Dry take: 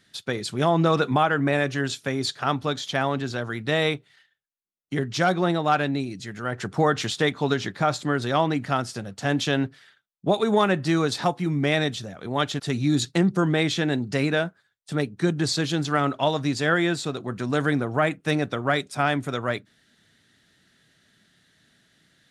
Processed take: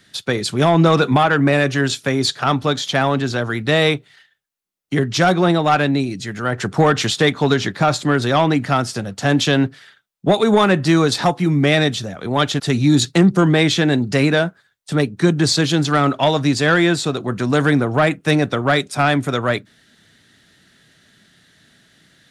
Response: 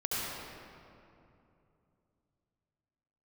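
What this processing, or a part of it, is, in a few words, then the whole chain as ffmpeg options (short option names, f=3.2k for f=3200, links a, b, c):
one-band saturation: -filter_complex "[0:a]acrossover=split=250|3000[a][b][c];[b]asoftclip=type=tanh:threshold=-16.5dB[d];[a][d][c]amix=inputs=3:normalize=0,volume=8.5dB"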